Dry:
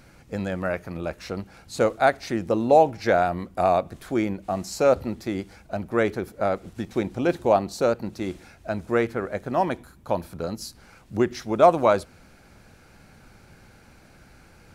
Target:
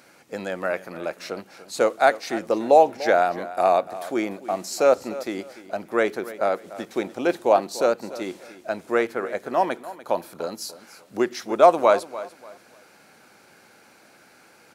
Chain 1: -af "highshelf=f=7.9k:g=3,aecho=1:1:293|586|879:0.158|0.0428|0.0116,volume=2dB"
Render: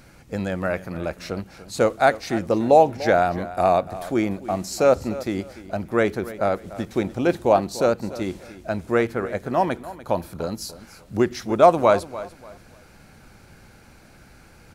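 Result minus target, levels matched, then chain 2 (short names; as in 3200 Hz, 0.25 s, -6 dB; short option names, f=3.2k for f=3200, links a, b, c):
250 Hz band +4.0 dB
-af "highpass=330,highshelf=f=7.9k:g=3,aecho=1:1:293|586|879:0.158|0.0428|0.0116,volume=2dB"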